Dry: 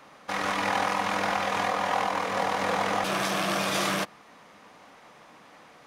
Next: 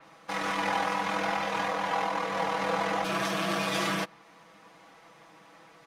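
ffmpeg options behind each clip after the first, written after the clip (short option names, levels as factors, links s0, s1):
-af "aecho=1:1:6.1:0.8,adynamicequalizer=threshold=0.00562:dfrequency=5300:dqfactor=0.7:tfrequency=5300:tqfactor=0.7:attack=5:release=100:ratio=0.375:range=2:mode=cutabove:tftype=highshelf,volume=0.596"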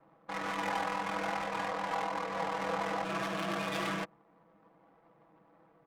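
-af "adynamicsmooth=sensitivity=6:basefreq=750,volume=0.562"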